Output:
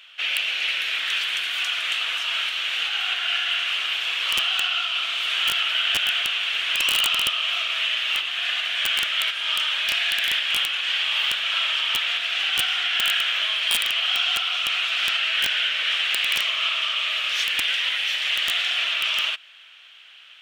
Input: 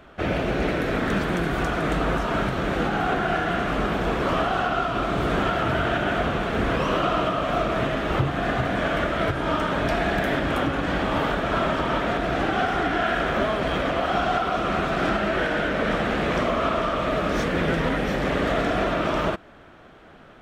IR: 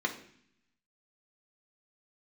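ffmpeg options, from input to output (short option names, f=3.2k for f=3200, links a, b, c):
-filter_complex "[0:a]highpass=f=2.9k:t=q:w=4.1,asettb=1/sr,asplit=3[a][b][c];[a]atrim=end=17.614[d];[b]atrim=start=17.61:end=18.75,asetpts=PTS-STARTPTS,afade=t=in:d=0.004:c=qsin,afade=t=out:st=1.136:d=0.004:c=qsin,afreqshift=33[e];[c]atrim=start=18.746[f];[d][e]acrossfade=d=0.004:c1=hsin:c2=qsin[g];[g][f]acrossfade=d=0.004:c1=qsin:c2=hsin,aeval=exprs='(mod(7.08*val(0)+1,2)-1)/7.08':c=same,volume=5dB"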